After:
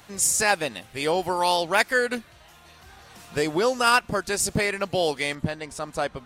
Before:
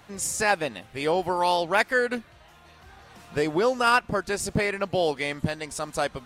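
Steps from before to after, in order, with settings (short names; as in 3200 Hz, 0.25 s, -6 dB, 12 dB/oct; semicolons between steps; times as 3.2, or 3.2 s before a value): high shelf 3800 Hz +9 dB, from 5.35 s -5 dB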